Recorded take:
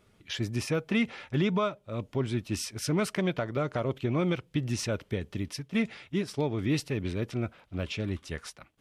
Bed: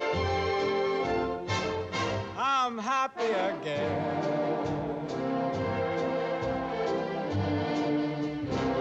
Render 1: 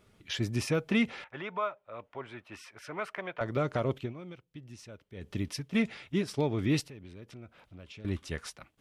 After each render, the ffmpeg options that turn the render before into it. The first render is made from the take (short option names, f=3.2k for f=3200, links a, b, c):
-filter_complex "[0:a]asettb=1/sr,asplit=3[a][b][c];[a]atrim=end=1.244[d];[b]atrim=start=1.24:end=3.41,asetpts=PTS-STARTPTS,afade=t=in:d=0.004:c=qsin,afade=t=out:st=2.166:d=0.004:c=qsin,acrossover=split=570 2400:gain=0.0891 1 0.1[e][f][g];[e][f][g]amix=inputs=3:normalize=0[h];[c]atrim=start=3.406[i];[d][h]acrossfade=d=0.004:c1=hsin:c2=qsin[j];[j][i]acrossfade=d=0.004:c1=qsin:c2=hsin,asettb=1/sr,asplit=3[k][l][m];[k]atrim=end=6.814[n];[l]atrim=start=6.81:end=8.05,asetpts=PTS-STARTPTS,afade=t=in:d=0.004:c=qsin,afade=t=out:st=1.236:d=0.004:c=qsin,acompressor=threshold=-52dB:ratio=2.5:attack=3.2:release=140:knee=1:detection=peak[o];[m]atrim=start=8.046[p];[n][o]acrossfade=d=0.004:c1=hsin:c2=qsin[q];[q][p]acrossfade=d=0.004:c1=qsin:c2=hsin,asplit=3[r][s][t];[r]atrim=end=4.14,asetpts=PTS-STARTPTS,afade=t=out:st=3.94:d=0.2:silence=0.133352[u];[s]atrim=start=4.14:end=5.14,asetpts=PTS-STARTPTS,volume=-17.5dB[v];[t]atrim=start=5.14,asetpts=PTS-STARTPTS,afade=t=in:d=0.2:silence=0.133352[w];[u][v][w]concat=n=3:v=0:a=1"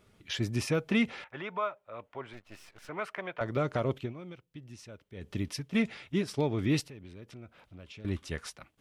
-filter_complex "[0:a]asettb=1/sr,asplit=3[a][b][c];[a]atrim=end=2.334[d];[b]atrim=start=2.33:end=2.89,asetpts=PTS-STARTPTS,afade=t=in:d=0.004:c=qsin,afade=t=out:st=0.556:d=0.004:c=qsin,aeval=exprs='max(val(0),0)':c=same[e];[c]atrim=start=2.886[f];[d][e]acrossfade=d=0.004:c1=hsin:c2=qsin[g];[g][f]acrossfade=d=0.004:c1=qsin:c2=hsin"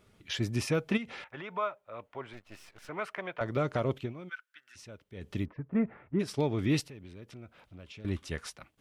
-filter_complex "[0:a]asplit=3[a][b][c];[a]afade=t=out:st=0.96:d=0.02[d];[b]acompressor=threshold=-37dB:ratio=5:attack=3.2:release=140:knee=1:detection=peak,afade=t=in:st=0.96:d=0.02,afade=t=out:st=1.55:d=0.02[e];[c]afade=t=in:st=1.55:d=0.02[f];[d][e][f]amix=inputs=3:normalize=0,asplit=3[g][h][i];[g]afade=t=out:st=4.28:d=0.02[j];[h]highpass=f=1.5k:t=q:w=14,afade=t=in:st=4.28:d=0.02,afade=t=out:st=4.75:d=0.02[k];[i]afade=t=in:st=4.75:d=0.02[l];[j][k][l]amix=inputs=3:normalize=0,asplit=3[m][n][o];[m]afade=t=out:st=5.44:d=0.02[p];[n]lowpass=f=1.5k:w=0.5412,lowpass=f=1.5k:w=1.3066,afade=t=in:st=5.44:d=0.02,afade=t=out:st=6.19:d=0.02[q];[o]afade=t=in:st=6.19:d=0.02[r];[p][q][r]amix=inputs=3:normalize=0"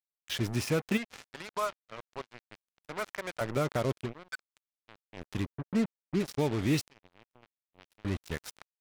-af "acrusher=bits=5:mix=0:aa=0.5"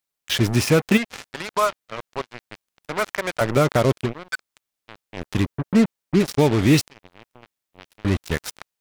-af "volume=12dB"